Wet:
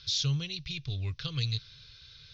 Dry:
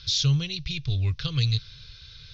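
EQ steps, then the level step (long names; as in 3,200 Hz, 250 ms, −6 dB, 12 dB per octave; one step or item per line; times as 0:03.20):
low-shelf EQ 82 Hz −9.5 dB
−5.0 dB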